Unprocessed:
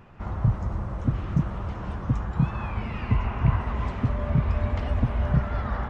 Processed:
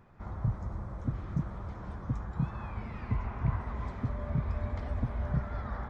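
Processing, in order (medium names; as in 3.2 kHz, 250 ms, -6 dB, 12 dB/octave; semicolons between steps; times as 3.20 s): peaking EQ 2.8 kHz -12 dB 0.24 oct; trim -8.5 dB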